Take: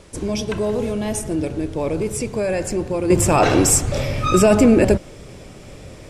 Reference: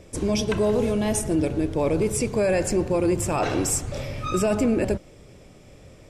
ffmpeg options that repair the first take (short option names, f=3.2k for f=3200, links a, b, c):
-af "agate=range=-21dB:threshold=-31dB,asetnsamples=n=441:p=0,asendcmd='3.1 volume volume -9dB',volume=0dB"